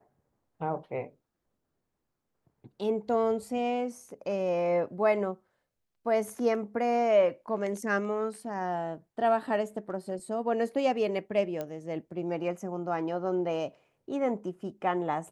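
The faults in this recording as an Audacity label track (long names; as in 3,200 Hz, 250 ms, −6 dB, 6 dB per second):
11.610000	11.610000	click −21 dBFS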